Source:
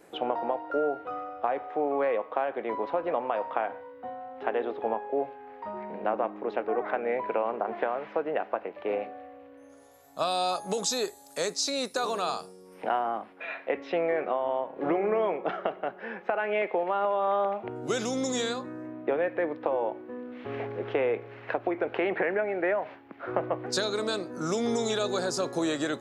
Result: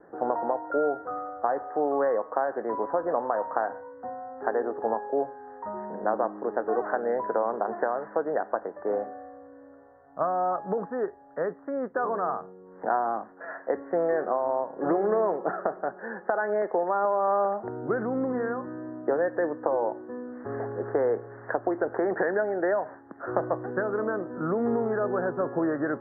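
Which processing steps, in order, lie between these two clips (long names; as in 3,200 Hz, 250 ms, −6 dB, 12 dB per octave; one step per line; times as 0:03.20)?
Butterworth low-pass 1,800 Hz 96 dB per octave
level +2 dB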